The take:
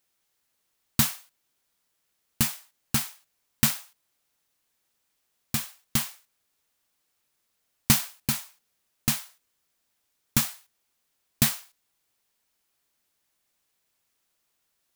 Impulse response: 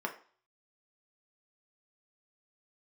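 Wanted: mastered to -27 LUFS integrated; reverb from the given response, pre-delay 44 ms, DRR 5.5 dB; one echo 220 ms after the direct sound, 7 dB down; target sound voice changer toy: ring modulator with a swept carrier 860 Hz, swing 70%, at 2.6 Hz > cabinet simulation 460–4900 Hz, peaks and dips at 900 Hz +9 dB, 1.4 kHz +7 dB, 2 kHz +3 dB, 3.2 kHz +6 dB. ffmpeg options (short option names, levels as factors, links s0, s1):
-filter_complex "[0:a]aecho=1:1:220:0.447,asplit=2[s0][s1];[1:a]atrim=start_sample=2205,adelay=44[s2];[s1][s2]afir=irnorm=-1:irlink=0,volume=0.316[s3];[s0][s3]amix=inputs=2:normalize=0,aeval=exprs='val(0)*sin(2*PI*860*n/s+860*0.7/2.6*sin(2*PI*2.6*n/s))':c=same,highpass=460,equalizer=f=900:t=q:w=4:g=9,equalizer=f=1400:t=q:w=4:g=7,equalizer=f=2000:t=q:w=4:g=3,equalizer=f=3200:t=q:w=4:g=6,lowpass=f=4900:w=0.5412,lowpass=f=4900:w=1.3066,volume=1.58"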